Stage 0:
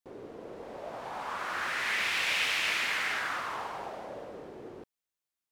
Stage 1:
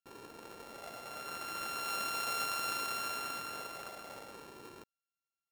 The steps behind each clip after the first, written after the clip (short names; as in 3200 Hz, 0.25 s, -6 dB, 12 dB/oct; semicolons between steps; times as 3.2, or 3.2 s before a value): sample sorter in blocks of 32 samples; gain -6.5 dB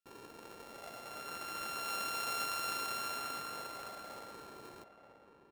outdoor echo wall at 160 m, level -8 dB; gain -1.5 dB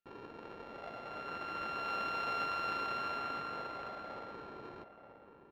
air absorption 300 m; gain +4.5 dB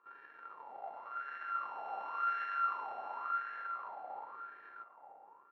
pre-echo 0.115 s -15.5 dB; wah 0.92 Hz 770–1700 Hz, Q 8.5; gain +10 dB